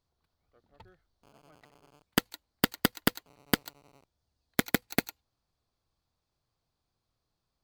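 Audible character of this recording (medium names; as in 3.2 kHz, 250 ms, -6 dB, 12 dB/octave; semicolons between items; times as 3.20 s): noise floor -84 dBFS; spectral tilt -3.5 dB/octave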